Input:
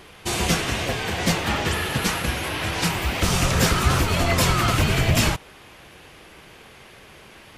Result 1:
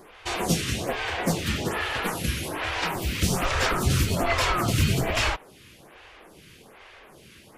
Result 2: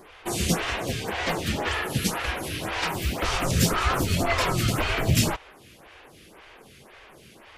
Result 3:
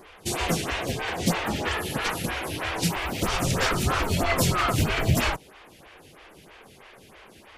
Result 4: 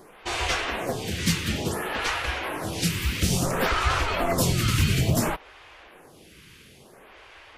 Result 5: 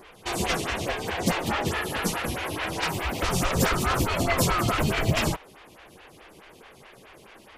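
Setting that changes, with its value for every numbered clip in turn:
phaser with staggered stages, speed: 1.2, 1.9, 3.1, 0.58, 4.7 Hertz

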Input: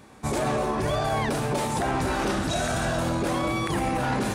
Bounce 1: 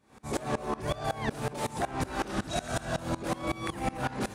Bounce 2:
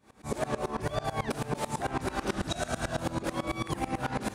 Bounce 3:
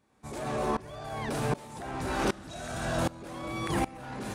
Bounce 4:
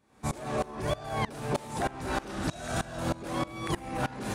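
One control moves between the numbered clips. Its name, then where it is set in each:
tremolo with a ramp in dB, speed: 5.4, 9.1, 1.3, 3.2 Hertz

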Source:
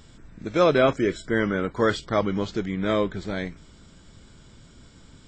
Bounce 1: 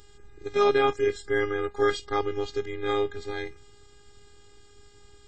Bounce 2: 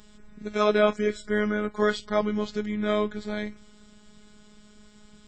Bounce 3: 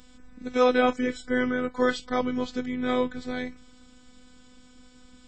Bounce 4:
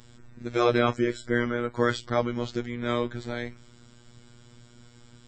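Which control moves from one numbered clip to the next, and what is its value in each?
phases set to zero, frequency: 410, 210, 250, 120 Hertz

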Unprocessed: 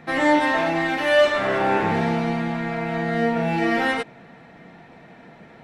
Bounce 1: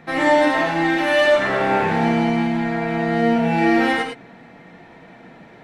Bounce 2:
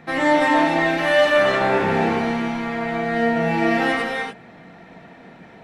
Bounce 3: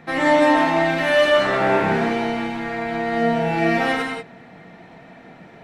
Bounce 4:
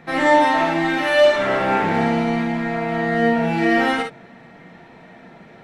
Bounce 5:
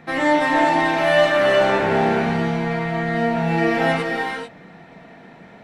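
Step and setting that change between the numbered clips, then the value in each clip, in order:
reverb whose tail is shaped and stops, gate: 130, 320, 210, 80, 470 milliseconds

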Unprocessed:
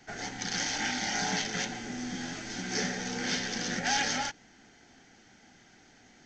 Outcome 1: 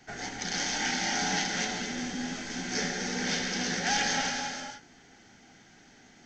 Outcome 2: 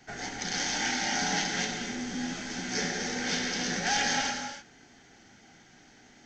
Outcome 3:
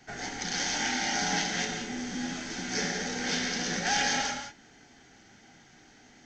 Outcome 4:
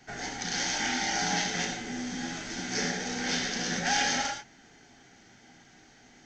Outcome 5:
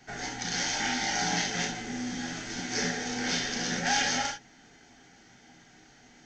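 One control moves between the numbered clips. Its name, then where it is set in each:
reverb whose tail is shaped and stops, gate: 510, 340, 230, 140, 90 milliseconds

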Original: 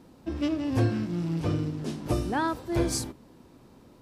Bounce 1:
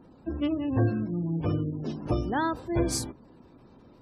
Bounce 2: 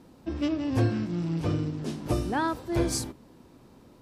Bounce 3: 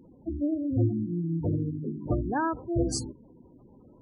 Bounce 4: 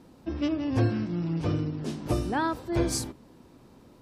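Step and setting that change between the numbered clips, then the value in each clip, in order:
gate on every frequency bin, under each frame's peak: −30, −55, −15, −45 decibels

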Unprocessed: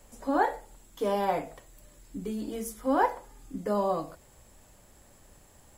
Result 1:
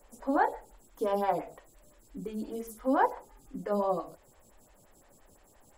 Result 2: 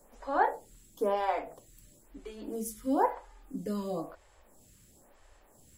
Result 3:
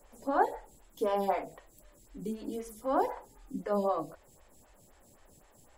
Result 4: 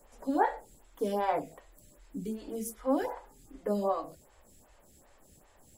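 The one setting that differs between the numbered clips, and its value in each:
phaser with staggered stages, speed: 5.8, 1, 3.9, 2.6 Hertz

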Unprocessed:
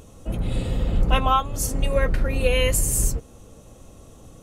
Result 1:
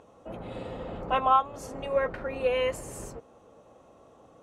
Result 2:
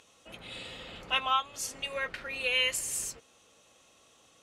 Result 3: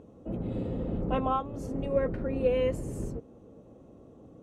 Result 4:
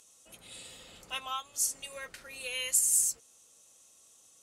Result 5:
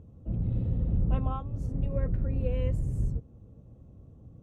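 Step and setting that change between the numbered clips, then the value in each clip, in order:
resonant band-pass, frequency: 830, 3,000, 320, 7,600, 110 Hertz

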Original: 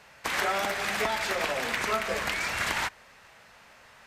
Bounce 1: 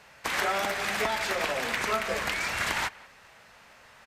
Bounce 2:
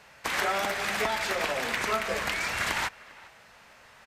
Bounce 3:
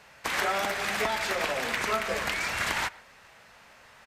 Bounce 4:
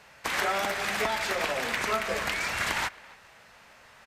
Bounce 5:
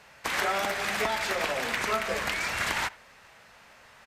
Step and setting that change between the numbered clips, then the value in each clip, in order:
far-end echo of a speakerphone, delay time: 180, 400, 120, 270, 80 milliseconds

